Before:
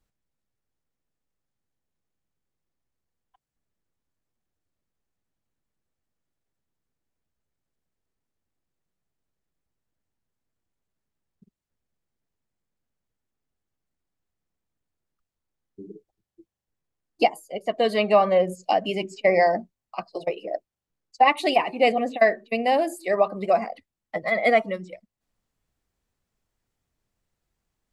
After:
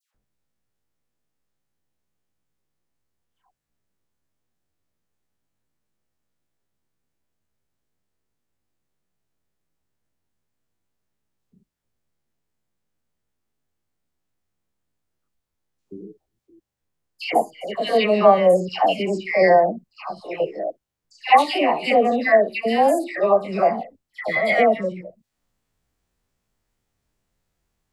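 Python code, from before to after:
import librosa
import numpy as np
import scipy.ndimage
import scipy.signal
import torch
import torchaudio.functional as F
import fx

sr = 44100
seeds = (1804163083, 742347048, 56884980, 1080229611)

y = fx.spec_steps(x, sr, hold_ms=50)
y = fx.dispersion(y, sr, late='lows', ms=147.0, hz=1400.0)
y = F.gain(torch.from_numpy(y), 5.5).numpy()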